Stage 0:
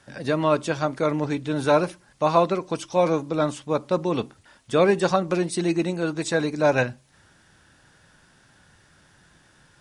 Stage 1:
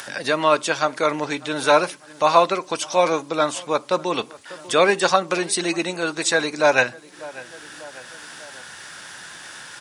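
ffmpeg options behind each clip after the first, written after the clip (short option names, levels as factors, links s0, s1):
-filter_complex "[0:a]asplit=2[s0][s1];[s1]adelay=595,lowpass=f=2000:p=1,volume=0.0708,asplit=2[s2][s3];[s3]adelay=595,lowpass=f=2000:p=1,volume=0.44,asplit=2[s4][s5];[s5]adelay=595,lowpass=f=2000:p=1,volume=0.44[s6];[s0][s2][s4][s6]amix=inputs=4:normalize=0,asplit=2[s7][s8];[s8]acompressor=mode=upward:threshold=0.0794:ratio=2.5,volume=0.708[s9];[s7][s9]amix=inputs=2:normalize=0,highpass=f=1200:p=1,volume=1.78"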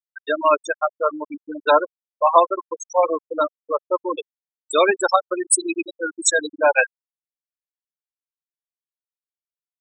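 -af "aemphasis=mode=production:type=50kf,afftfilt=real='re*gte(hypot(re,im),0.398)':imag='im*gte(hypot(re,im),0.398)':win_size=1024:overlap=0.75,equalizer=f=1100:t=o:w=0.77:g=2"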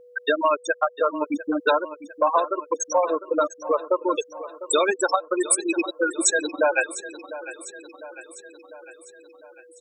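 -af "acompressor=threshold=0.0447:ratio=5,aeval=exprs='val(0)+0.00178*sin(2*PI*490*n/s)':c=same,aecho=1:1:701|1402|2103|2804|3505|4206:0.178|0.101|0.0578|0.0329|0.0188|0.0107,volume=2.51"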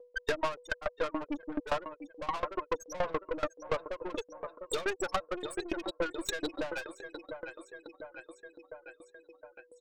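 -af "lowpass=4800,aeval=exprs='(tanh(17.8*val(0)+0.5)-tanh(0.5))/17.8':c=same,aeval=exprs='val(0)*pow(10,-22*if(lt(mod(7*n/s,1),2*abs(7)/1000),1-mod(7*n/s,1)/(2*abs(7)/1000),(mod(7*n/s,1)-2*abs(7)/1000)/(1-2*abs(7)/1000))/20)':c=same,volume=1.26"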